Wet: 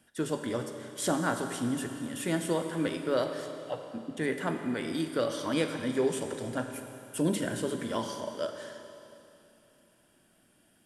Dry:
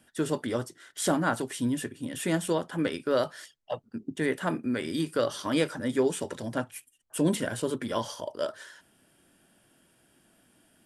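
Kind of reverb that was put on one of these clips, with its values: Schroeder reverb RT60 2.9 s, combs from 31 ms, DRR 6 dB; trim -3 dB

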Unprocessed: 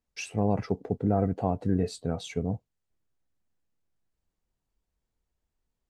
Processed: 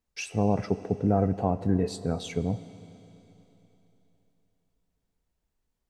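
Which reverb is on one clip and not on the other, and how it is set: Schroeder reverb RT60 3.4 s, combs from 28 ms, DRR 14 dB; trim +1.5 dB

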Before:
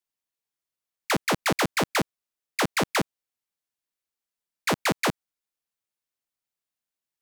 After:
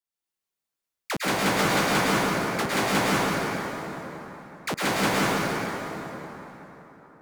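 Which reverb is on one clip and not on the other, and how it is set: plate-style reverb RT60 4 s, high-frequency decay 0.6×, pre-delay 95 ms, DRR -8.5 dB; trim -5.5 dB

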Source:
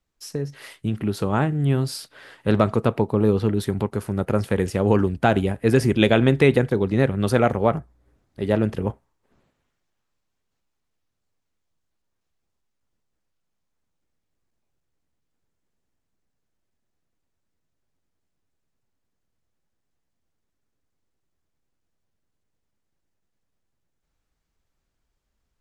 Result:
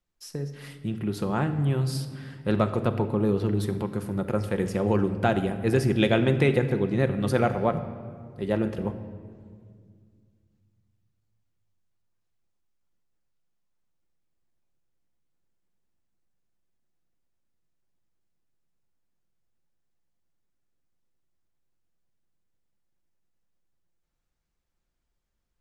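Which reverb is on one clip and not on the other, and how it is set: simulated room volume 3500 m³, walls mixed, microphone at 0.88 m; trim -5.5 dB

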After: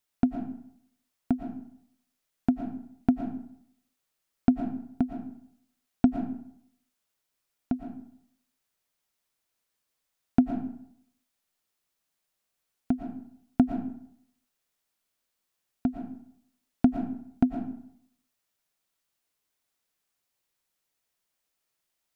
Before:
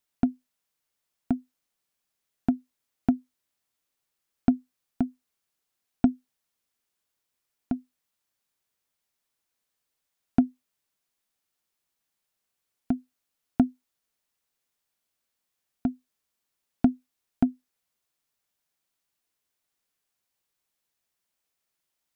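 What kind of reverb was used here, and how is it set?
algorithmic reverb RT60 0.68 s, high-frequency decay 0.65×, pre-delay 75 ms, DRR 5 dB

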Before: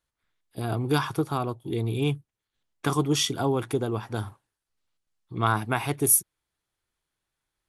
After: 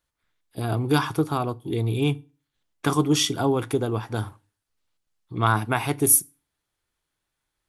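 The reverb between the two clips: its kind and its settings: FDN reverb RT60 0.32 s, low-frequency decay 1.3×, high-frequency decay 0.9×, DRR 17 dB; trim +2.5 dB

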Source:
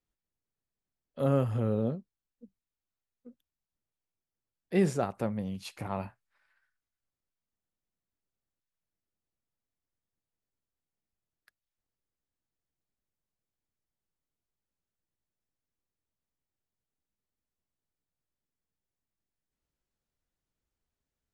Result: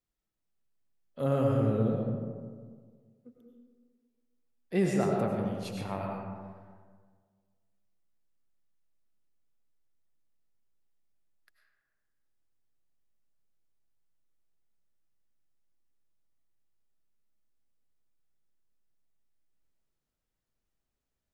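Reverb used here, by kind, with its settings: algorithmic reverb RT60 1.7 s, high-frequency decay 0.4×, pre-delay 60 ms, DRR -0.5 dB; trim -2 dB

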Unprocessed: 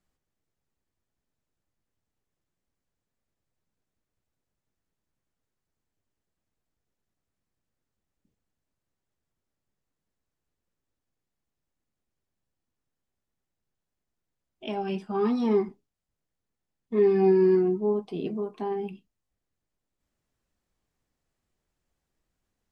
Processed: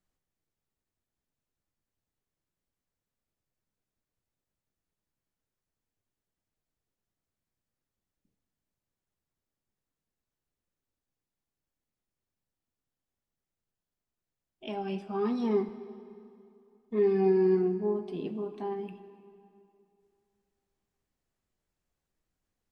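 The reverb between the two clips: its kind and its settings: plate-style reverb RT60 2.6 s, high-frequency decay 0.8×, DRR 11 dB; trim -4.5 dB

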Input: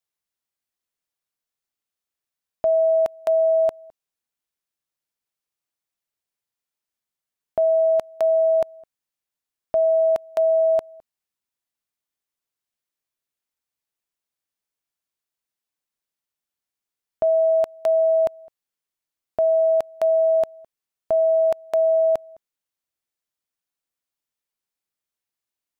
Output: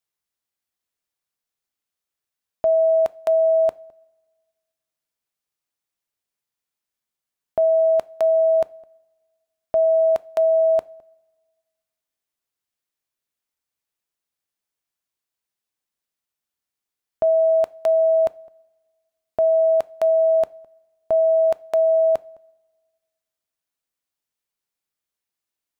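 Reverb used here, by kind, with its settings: two-slope reverb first 0.31 s, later 1.6 s, from -18 dB, DRR 18 dB; trim +1 dB

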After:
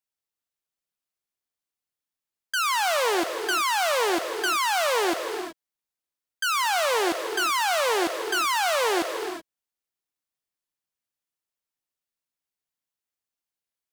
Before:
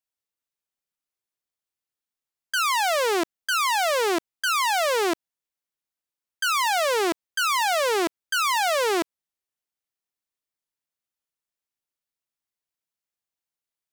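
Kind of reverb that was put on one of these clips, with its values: gated-style reverb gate 400 ms rising, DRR 6.5 dB; trim -1.5 dB

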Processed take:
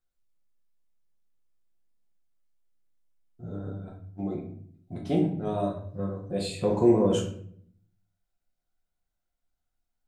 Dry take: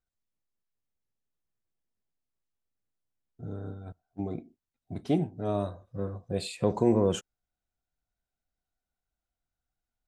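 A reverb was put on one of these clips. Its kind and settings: simulated room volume 86 m³, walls mixed, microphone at 0.9 m; trim -2 dB

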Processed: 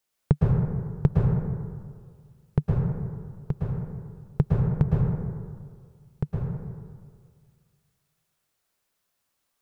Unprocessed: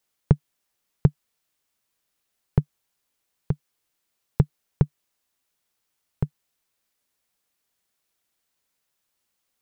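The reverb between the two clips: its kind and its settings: plate-style reverb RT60 1.9 s, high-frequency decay 0.35×, pre-delay 100 ms, DRR -4 dB; trim -3 dB

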